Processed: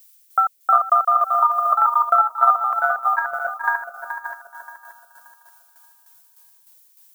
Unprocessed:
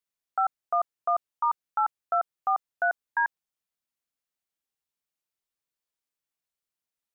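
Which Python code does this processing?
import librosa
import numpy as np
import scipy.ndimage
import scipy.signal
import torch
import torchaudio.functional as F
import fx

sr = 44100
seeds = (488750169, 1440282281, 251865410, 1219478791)

p1 = fx.reverse_delay_fb(x, sr, ms=289, feedback_pct=54, wet_db=-0.5)
p2 = fx.graphic_eq_31(p1, sr, hz=(315, 500, 800, 1250), db=(-10, 3, -5, 10))
p3 = p2 + fx.echo_filtered(p2, sr, ms=426, feedback_pct=33, hz=1700.0, wet_db=-4, dry=0)
p4 = fx.dmg_noise_colour(p3, sr, seeds[0], colour='violet', level_db=-53.0)
p5 = fx.transient(p4, sr, attack_db=5, sustain_db=-5)
p6 = fx.tremolo_shape(p5, sr, shape='saw_down', hz=3.3, depth_pct=60)
p7 = fx.band_squash(p6, sr, depth_pct=100, at=(0.75, 2.35))
y = F.gain(torch.from_numpy(p7), 2.5).numpy()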